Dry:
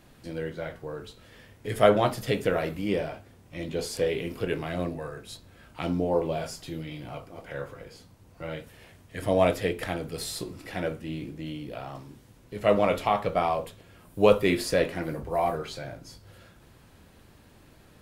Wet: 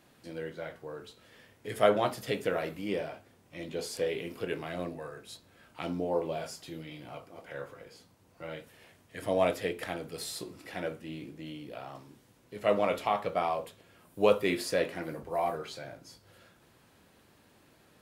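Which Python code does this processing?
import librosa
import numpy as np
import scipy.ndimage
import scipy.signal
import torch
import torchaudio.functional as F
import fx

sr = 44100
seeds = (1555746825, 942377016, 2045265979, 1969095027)

y = fx.highpass(x, sr, hz=220.0, slope=6)
y = y * librosa.db_to_amplitude(-4.0)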